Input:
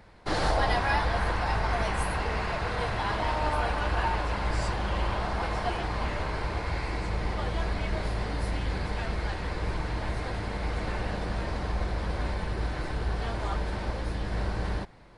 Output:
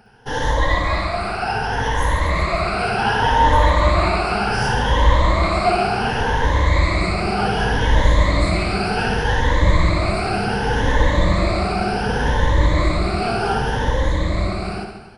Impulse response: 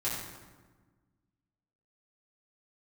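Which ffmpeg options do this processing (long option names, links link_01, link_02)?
-af "afftfilt=real='re*pow(10,18/40*sin(2*PI*(1.1*log(max(b,1)*sr/1024/100)/log(2)-(0.67)*(pts-256)/sr)))':imag='im*pow(10,18/40*sin(2*PI*(1.1*log(max(b,1)*sr/1024/100)/log(2)-(0.67)*(pts-256)/sr)))':win_size=1024:overlap=0.75,aecho=1:1:60|138|239.4|371.2|542.6:0.631|0.398|0.251|0.158|0.1,dynaudnorm=framelen=290:gausssize=13:maxgain=10.5dB"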